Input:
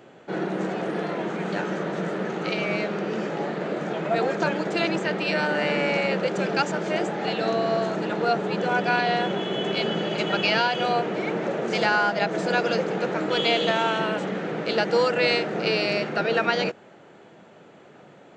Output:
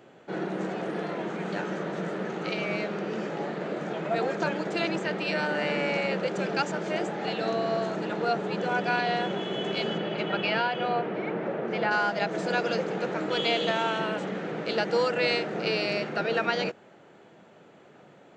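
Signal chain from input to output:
0:09.97–0:11.90: low-pass filter 3,500 Hz → 2,200 Hz 12 dB per octave
level −4 dB

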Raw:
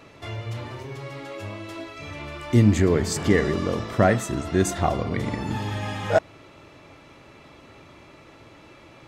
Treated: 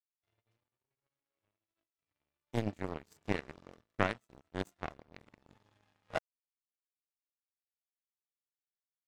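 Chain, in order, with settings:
0:02.43–0:03.11: low-shelf EQ 65 Hz −10 dB
power curve on the samples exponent 3
level −4.5 dB

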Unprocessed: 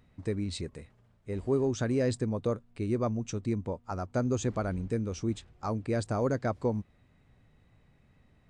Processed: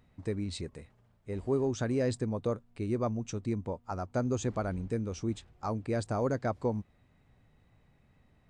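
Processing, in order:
parametric band 820 Hz +2.5 dB
level −2 dB

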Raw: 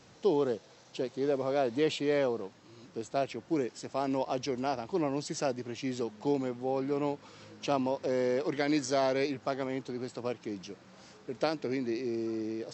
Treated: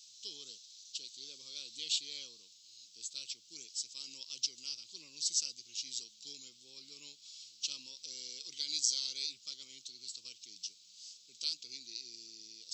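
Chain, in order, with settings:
inverse Chebyshev high-pass filter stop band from 1,900 Hz, stop band 40 dB
level +9 dB

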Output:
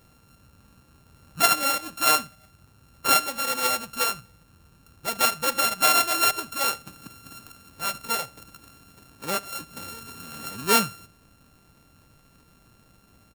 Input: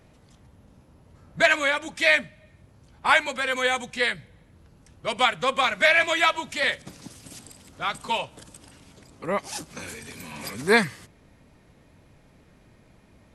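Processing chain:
samples sorted by size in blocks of 32 samples
high-shelf EQ 6,900 Hz +7.5 dB
on a send: single-tap delay 74 ms −22.5 dB
on the sum: level −2.5 dB

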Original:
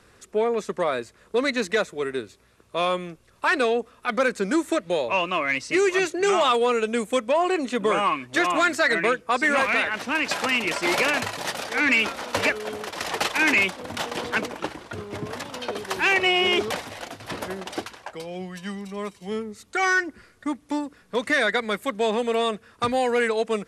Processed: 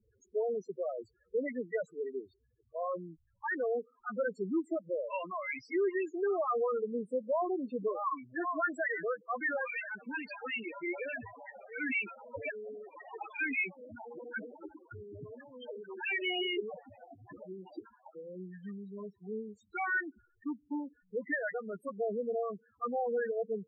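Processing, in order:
spectral peaks only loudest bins 4
level −9 dB

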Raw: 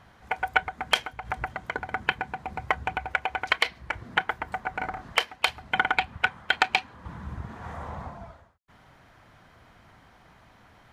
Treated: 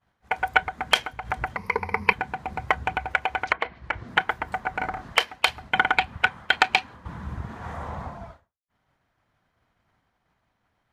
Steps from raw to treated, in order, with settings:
0:01.56–0:02.13: EQ curve with evenly spaced ripples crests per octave 0.86, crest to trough 17 dB
0:03.39–0:04.08: treble cut that deepens with the level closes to 1,200 Hz, closed at −22 dBFS
downward expander −42 dBFS
level +3 dB

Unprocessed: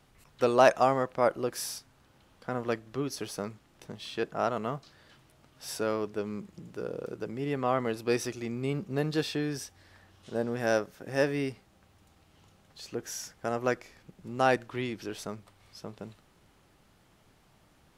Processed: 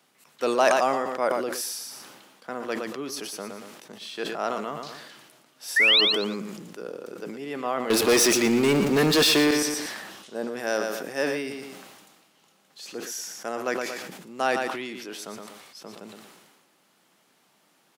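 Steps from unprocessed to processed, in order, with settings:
high-pass filter 180 Hz 24 dB per octave
spectral tilt +1.5 dB per octave
0:05.76–0:06.01: sound drawn into the spectrogram rise 1,700–4,400 Hz −18 dBFS
0:07.90–0:09.51: leveller curve on the samples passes 5
on a send: repeating echo 117 ms, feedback 23%, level −11.5 dB
on the sum: level that may fall only so fast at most 37 dB per second

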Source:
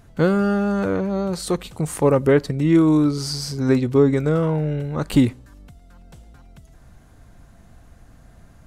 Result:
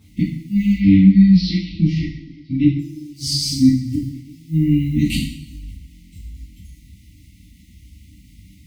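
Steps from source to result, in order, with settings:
high-pass filter 45 Hz 24 dB per octave
high-shelf EQ 3,300 Hz −9 dB
gate with flip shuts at −12 dBFS, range −27 dB
sine wavefolder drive 5 dB, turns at −9.5 dBFS
bit reduction 8 bits
0:00.72–0:02.79: Chebyshev low-pass filter 5,300 Hz, order 5
brick-wall band-stop 340–1,900 Hz
noise reduction from a noise print of the clip's start 10 dB
coupled-rooms reverb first 0.59 s, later 1.6 s, DRR −8.5 dB
level −4 dB

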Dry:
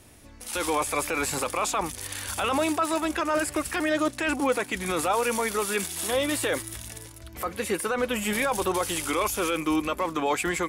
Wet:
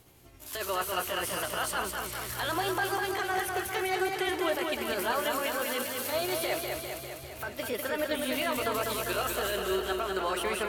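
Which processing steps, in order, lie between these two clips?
pitch shift by two crossfaded delay taps +3.5 semitones
feedback echo with a swinging delay time 200 ms, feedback 66%, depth 50 cents, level −4.5 dB
level −5 dB

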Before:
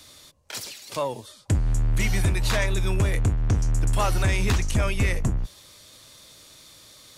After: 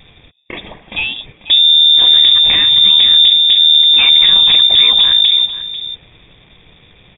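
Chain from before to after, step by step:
phaser with its sweep stopped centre 2,200 Hz, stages 6
leveller curve on the samples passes 2
on a send: single-tap delay 492 ms −14 dB
on the sum: voice inversion scrambler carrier 3,600 Hz
level +7.5 dB

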